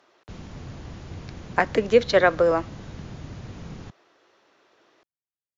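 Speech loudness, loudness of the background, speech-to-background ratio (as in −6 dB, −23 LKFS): −21.0 LKFS, −40.5 LKFS, 19.5 dB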